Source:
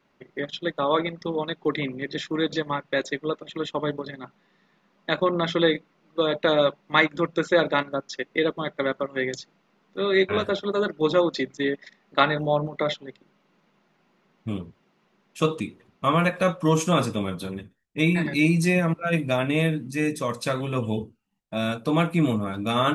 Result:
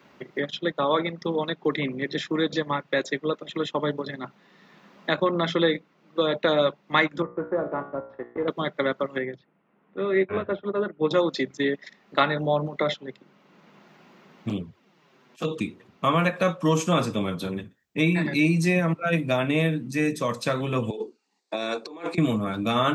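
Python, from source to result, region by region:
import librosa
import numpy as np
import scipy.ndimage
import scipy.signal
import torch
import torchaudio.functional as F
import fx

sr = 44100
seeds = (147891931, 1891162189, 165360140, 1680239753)

y = fx.chain(x, sr, fx.block_float(bits=3),
    fx.lowpass(hz=1200.0, slope=24),
    fx.comb_fb(f0_hz=60.0, decay_s=0.47, harmonics='all', damping=0.0, mix_pct=70), at=(7.22, 8.48))
y = fx.chain(y, sr, fx.lowpass(hz=2700.0, slope=24),
    fx.high_shelf(hz=2000.0, db=-7.5),
    fx.upward_expand(threshold_db=-34.0, expansion=1.5), at=(9.18, 11.11))
y = fx.chain(y, sr, fx.auto_swell(attack_ms=198.0),
    fx.env_flanger(rest_ms=8.5, full_db=-25.0),
    fx.highpass(hz=54.0, slope=12), at=(14.49, 15.61))
y = fx.chain(y, sr, fx.cabinet(low_hz=330.0, low_slope=24, high_hz=8100.0, hz=(400.0, 610.0, 1400.0, 3000.0, 4400.0), db=(6, -6, -7, -10, 7)),
    fx.over_compress(threshold_db=-33.0, ratio=-0.5), at=(20.9, 22.18))
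y = scipy.signal.sosfilt(scipy.signal.butter(2, 79.0, 'highpass', fs=sr, output='sos'), y)
y = fx.peak_eq(y, sr, hz=10000.0, db=-11.0, octaves=0.25)
y = fx.band_squash(y, sr, depth_pct=40)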